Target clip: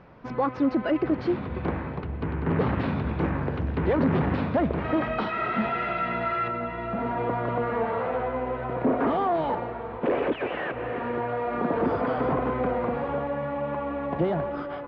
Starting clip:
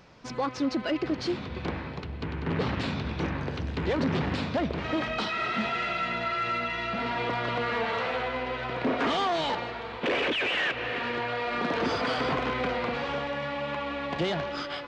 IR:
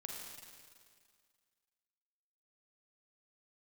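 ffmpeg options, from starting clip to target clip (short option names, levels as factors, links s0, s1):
-af "asetnsamples=n=441:p=0,asendcmd='6.48 lowpass f 1000',lowpass=1600,volume=1.68"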